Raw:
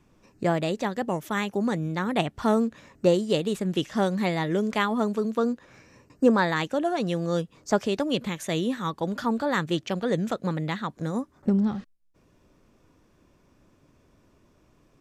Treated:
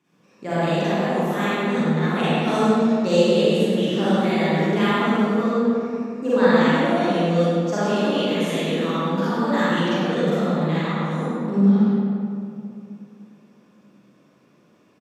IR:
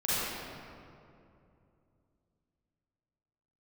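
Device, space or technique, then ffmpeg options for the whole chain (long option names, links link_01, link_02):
PA in a hall: -filter_complex "[0:a]asettb=1/sr,asplit=3[link_01][link_02][link_03];[link_01]atrim=end=2.474[link_04];[link_02]atrim=start=2.47:end=3.16,asetpts=PTS-STARTPTS,afade=type=in:duration=0.004:curve=qsin,afade=type=out:start_time=0.686:duration=0.004:curve=qsin,equalizer=frequency=5100:width_type=o:width=1.6:gain=9[link_05];[link_03]atrim=start=3.156[link_06];[link_04][link_05]acrossfade=duration=0.004:curve1=hsin:curve2=qsin[link_07];[link_07][link_06]acrossfade=duration=0.004:curve1=qsin:curve2=hsin,highpass=frequency=150:width=0.5412,highpass=frequency=150:width=1.3066,equalizer=frequency=2800:width_type=o:width=1.5:gain=3.5,aecho=1:1:101:0.422[link_08];[1:a]atrim=start_sample=2205[link_09];[link_08][link_09]afir=irnorm=-1:irlink=0,volume=-7dB"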